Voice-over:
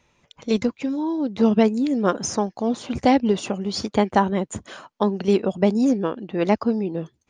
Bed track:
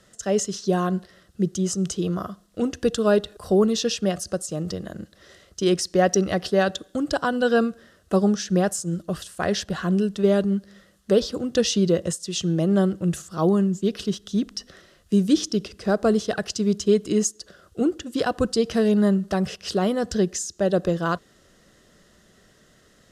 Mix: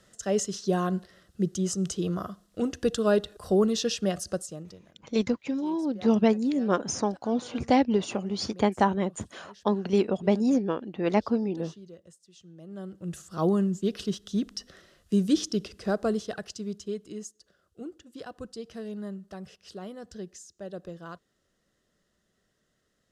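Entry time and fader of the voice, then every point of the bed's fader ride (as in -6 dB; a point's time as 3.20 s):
4.65 s, -4.5 dB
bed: 4.37 s -4 dB
4.99 s -27.5 dB
12.53 s -27.5 dB
13.35 s -4.5 dB
15.79 s -4.5 dB
17.21 s -18 dB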